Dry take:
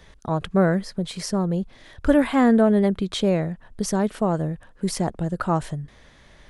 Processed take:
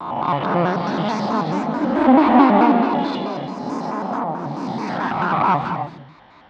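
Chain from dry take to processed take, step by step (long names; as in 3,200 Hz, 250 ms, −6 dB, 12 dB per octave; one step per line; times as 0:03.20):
peak hold with a rise ahead of every peak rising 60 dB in 1.24 s
parametric band 1,100 Hz +7.5 dB 1 octave
0:02.72–0:05.18: downward compressor 6 to 1, threshold −23 dBFS, peak gain reduction 9.5 dB
asymmetric clip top −20 dBFS
delay with pitch and tempo change per echo 570 ms, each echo +3 semitones, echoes 3, each echo −6 dB
loudspeaker in its box 120–4,200 Hz, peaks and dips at 190 Hz −3 dB, 270 Hz +9 dB, 470 Hz −5 dB, 880 Hz +9 dB, 1,700 Hz −5 dB, 2,900 Hz −3 dB
reverb whose tail is shaped and stops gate 320 ms rising, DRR 7 dB
pitch modulation by a square or saw wave square 4.6 Hz, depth 160 cents
level −1.5 dB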